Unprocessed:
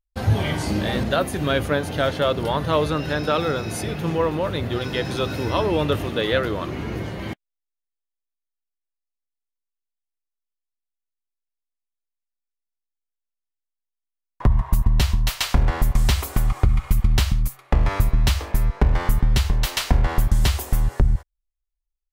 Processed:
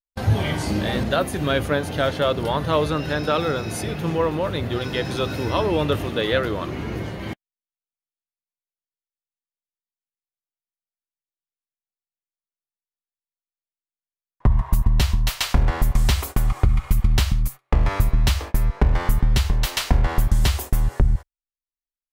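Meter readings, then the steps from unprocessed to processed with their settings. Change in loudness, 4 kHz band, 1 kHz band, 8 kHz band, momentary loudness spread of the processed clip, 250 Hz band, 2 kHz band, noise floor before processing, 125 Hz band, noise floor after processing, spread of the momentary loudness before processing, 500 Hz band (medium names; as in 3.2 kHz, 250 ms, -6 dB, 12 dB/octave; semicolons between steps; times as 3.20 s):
0.0 dB, 0.0 dB, 0.0 dB, 0.0 dB, 5 LU, 0.0 dB, 0.0 dB, -84 dBFS, 0.0 dB, under -85 dBFS, 5 LU, 0.0 dB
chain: gate -31 dBFS, range -21 dB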